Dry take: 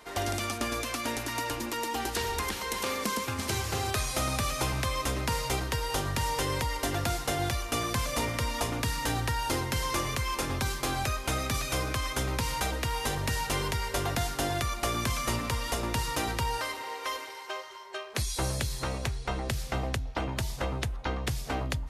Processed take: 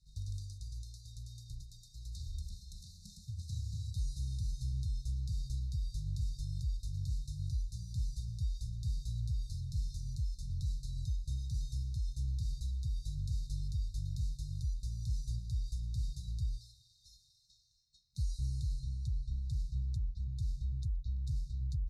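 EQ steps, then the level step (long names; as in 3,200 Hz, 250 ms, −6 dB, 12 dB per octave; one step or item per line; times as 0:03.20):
linear-phase brick-wall band-stop 190–3,600 Hz
high-frequency loss of the air 70 metres
guitar amp tone stack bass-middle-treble 10-0-1
+6.5 dB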